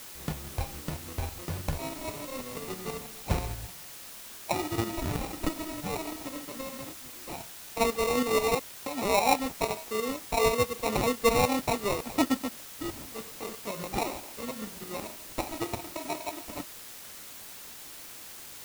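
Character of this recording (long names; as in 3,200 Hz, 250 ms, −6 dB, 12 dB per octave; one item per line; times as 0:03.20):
aliases and images of a low sample rate 1,600 Hz, jitter 0%
tremolo saw up 6.2 Hz, depth 60%
a quantiser's noise floor 8 bits, dither triangular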